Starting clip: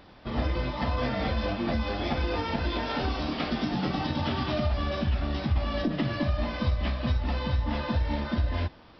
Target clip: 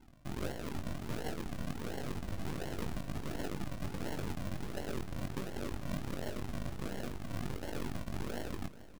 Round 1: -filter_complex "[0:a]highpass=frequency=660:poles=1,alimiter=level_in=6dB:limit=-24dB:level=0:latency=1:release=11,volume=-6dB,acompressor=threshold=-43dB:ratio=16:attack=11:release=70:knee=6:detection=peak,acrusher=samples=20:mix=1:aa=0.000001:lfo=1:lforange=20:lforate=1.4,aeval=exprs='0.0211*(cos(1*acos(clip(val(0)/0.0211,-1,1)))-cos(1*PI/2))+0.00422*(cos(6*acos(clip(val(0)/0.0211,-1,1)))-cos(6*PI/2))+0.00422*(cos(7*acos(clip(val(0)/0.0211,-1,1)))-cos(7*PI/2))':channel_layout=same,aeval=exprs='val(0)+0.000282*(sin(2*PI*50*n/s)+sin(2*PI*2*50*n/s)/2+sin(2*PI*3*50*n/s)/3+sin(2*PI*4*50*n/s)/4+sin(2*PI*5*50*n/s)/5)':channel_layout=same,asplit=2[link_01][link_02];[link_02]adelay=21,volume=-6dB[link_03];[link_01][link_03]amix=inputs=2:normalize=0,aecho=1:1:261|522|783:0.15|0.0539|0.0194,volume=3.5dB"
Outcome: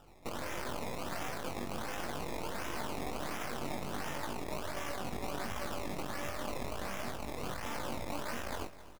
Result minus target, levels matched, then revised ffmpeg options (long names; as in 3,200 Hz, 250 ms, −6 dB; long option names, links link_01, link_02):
sample-and-hold swept by an LFO: distortion −14 dB; echo 174 ms early
-filter_complex "[0:a]highpass=frequency=660:poles=1,alimiter=level_in=6dB:limit=-24dB:level=0:latency=1:release=11,volume=-6dB,acompressor=threshold=-43dB:ratio=16:attack=11:release=70:knee=6:detection=peak,acrusher=samples=71:mix=1:aa=0.000001:lfo=1:lforange=71:lforate=1.4,aeval=exprs='0.0211*(cos(1*acos(clip(val(0)/0.0211,-1,1)))-cos(1*PI/2))+0.00422*(cos(6*acos(clip(val(0)/0.0211,-1,1)))-cos(6*PI/2))+0.00422*(cos(7*acos(clip(val(0)/0.0211,-1,1)))-cos(7*PI/2))':channel_layout=same,aeval=exprs='val(0)+0.000282*(sin(2*PI*50*n/s)+sin(2*PI*2*50*n/s)/2+sin(2*PI*3*50*n/s)/3+sin(2*PI*4*50*n/s)/4+sin(2*PI*5*50*n/s)/5)':channel_layout=same,asplit=2[link_01][link_02];[link_02]adelay=21,volume=-6dB[link_03];[link_01][link_03]amix=inputs=2:normalize=0,aecho=1:1:435|870|1305:0.15|0.0539|0.0194,volume=3.5dB"